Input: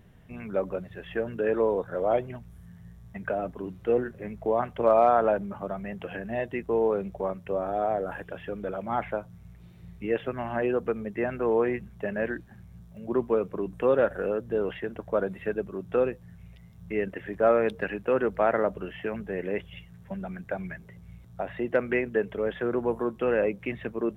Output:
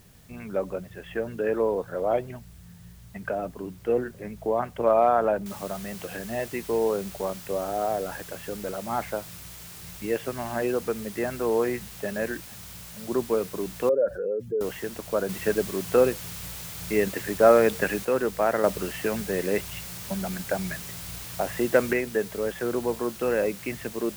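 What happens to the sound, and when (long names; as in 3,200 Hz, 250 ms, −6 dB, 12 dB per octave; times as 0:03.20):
0:05.46: noise floor change −59 dB −44 dB
0:13.89–0:14.61: expanding power law on the bin magnitudes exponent 2.1
0:15.29–0:18.05: clip gain +5 dB
0:18.64–0:21.93: clip gain +4.5 dB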